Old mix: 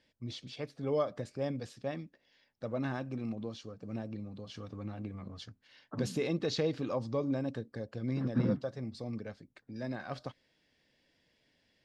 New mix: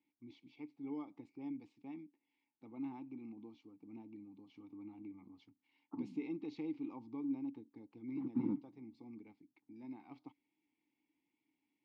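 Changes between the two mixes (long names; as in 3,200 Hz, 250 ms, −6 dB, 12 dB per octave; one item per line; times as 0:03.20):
second voice +5.5 dB
master: add formant filter u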